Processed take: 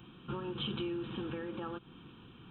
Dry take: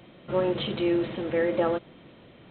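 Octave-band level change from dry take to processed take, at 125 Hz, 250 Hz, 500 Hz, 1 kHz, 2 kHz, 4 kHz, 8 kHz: -6.0 dB, -11.0 dB, -16.5 dB, -11.5 dB, -12.5 dB, -5.0 dB, n/a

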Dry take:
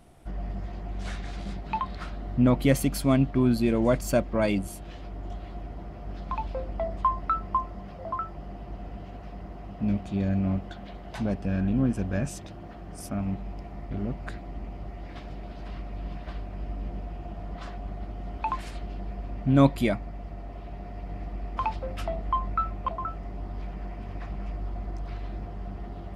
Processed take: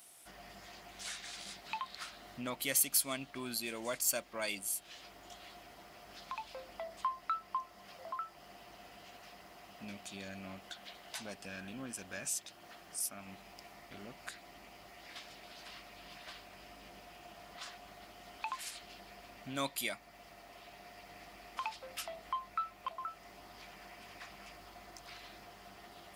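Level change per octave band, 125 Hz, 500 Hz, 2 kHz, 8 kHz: -27.5, -15.5, -4.5, +6.5 dB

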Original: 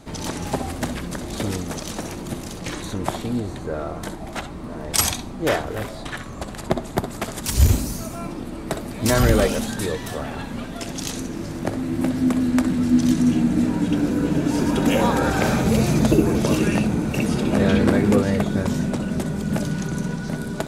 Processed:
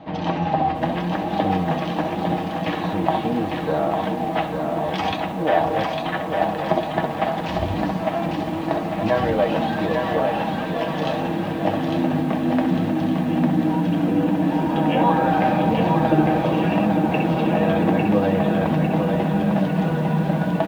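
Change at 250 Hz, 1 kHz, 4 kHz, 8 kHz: 0.0 dB, +8.5 dB, -2.5 dB, under -15 dB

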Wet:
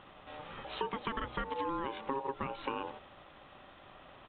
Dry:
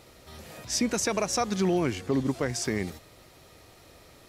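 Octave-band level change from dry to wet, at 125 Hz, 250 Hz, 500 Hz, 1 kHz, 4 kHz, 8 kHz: -16.5 dB, -15.0 dB, -10.5 dB, -1.5 dB, -11.0 dB, under -40 dB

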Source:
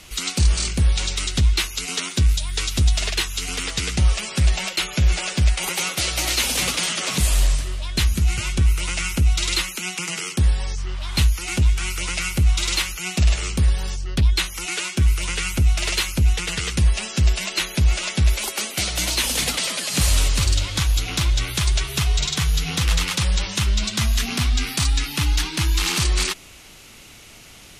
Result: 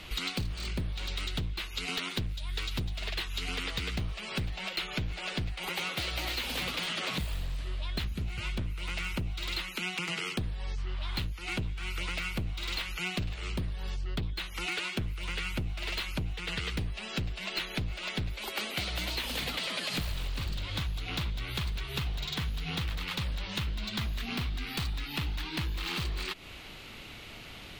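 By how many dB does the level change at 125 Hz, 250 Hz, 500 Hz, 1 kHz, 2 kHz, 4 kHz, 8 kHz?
-14.5, -9.5, -8.5, -9.0, -9.0, -11.0, -22.0 dB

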